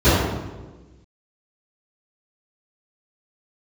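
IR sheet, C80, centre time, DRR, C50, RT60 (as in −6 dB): 1.0 dB, 97 ms, −19.0 dB, −2.0 dB, 1.3 s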